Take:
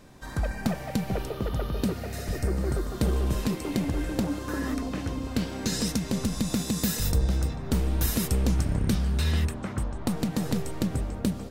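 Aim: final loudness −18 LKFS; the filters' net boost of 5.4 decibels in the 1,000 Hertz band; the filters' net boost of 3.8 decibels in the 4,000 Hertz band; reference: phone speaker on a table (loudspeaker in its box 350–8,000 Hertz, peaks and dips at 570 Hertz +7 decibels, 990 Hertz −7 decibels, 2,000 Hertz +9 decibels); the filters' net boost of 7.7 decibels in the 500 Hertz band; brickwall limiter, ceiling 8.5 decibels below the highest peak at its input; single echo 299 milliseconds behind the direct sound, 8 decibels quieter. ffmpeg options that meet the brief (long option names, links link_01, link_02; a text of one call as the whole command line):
ffmpeg -i in.wav -af "equalizer=frequency=500:width_type=o:gain=4.5,equalizer=frequency=1000:width_type=o:gain=7.5,equalizer=frequency=4000:width_type=o:gain=4,alimiter=limit=-17dB:level=0:latency=1,highpass=frequency=350:width=0.5412,highpass=frequency=350:width=1.3066,equalizer=frequency=570:width_type=q:width=4:gain=7,equalizer=frequency=990:width_type=q:width=4:gain=-7,equalizer=frequency=2000:width_type=q:width=4:gain=9,lowpass=frequency=8000:width=0.5412,lowpass=frequency=8000:width=1.3066,aecho=1:1:299:0.398,volume=13dB" out.wav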